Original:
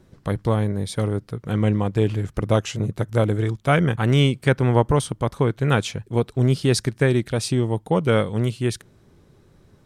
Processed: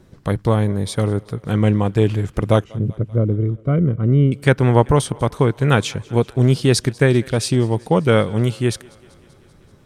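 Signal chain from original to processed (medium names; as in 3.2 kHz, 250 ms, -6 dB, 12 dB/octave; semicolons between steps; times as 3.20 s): 2.64–4.32 s: boxcar filter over 52 samples; thinning echo 193 ms, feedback 70%, high-pass 280 Hz, level -24 dB; trim +4 dB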